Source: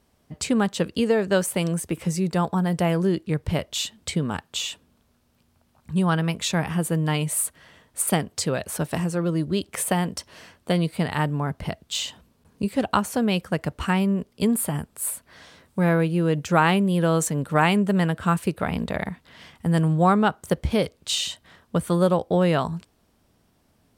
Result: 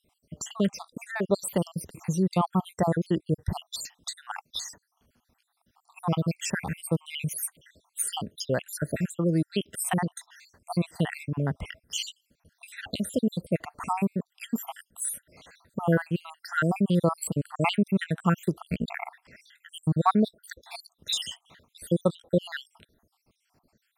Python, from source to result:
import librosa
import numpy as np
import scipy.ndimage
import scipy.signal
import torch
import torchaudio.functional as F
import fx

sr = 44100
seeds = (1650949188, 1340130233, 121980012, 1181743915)

y = fx.spec_dropout(x, sr, seeds[0], share_pct=69)